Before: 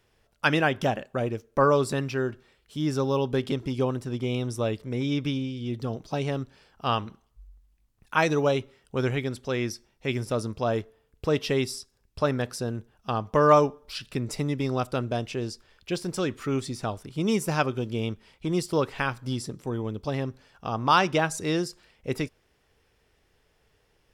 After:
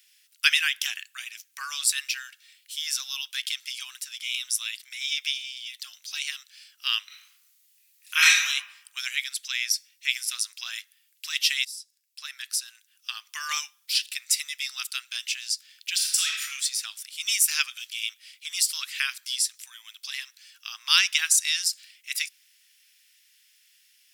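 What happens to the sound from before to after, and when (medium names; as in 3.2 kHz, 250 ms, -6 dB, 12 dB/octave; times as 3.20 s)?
7.06–8.46 s: reverb throw, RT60 0.84 s, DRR -6 dB
11.65–13.30 s: fade in, from -20 dB
15.94–16.42 s: reverb throw, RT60 1 s, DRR -1.5 dB
whole clip: inverse Chebyshev high-pass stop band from 440 Hz, stop band 70 dB; tilt EQ +4 dB/octave; trim +4 dB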